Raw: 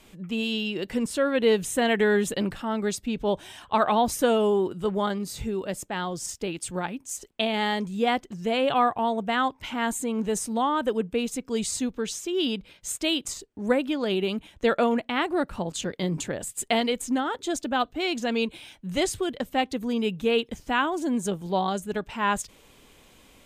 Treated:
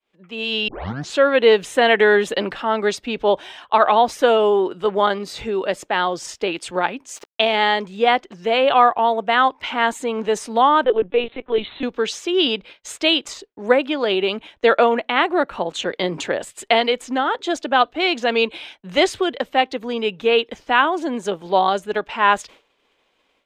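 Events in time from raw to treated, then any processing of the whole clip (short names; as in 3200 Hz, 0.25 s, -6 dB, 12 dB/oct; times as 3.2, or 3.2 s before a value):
0.68 tape start 0.50 s
7.16–7.56 sample gate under -41 dBFS
10.84–11.83 LPC vocoder at 8 kHz pitch kept
14.84–15.92 notch 4900 Hz, Q 6
whole clip: expander -42 dBFS; three-band isolator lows -17 dB, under 340 Hz, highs -19 dB, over 4800 Hz; AGC gain up to 12 dB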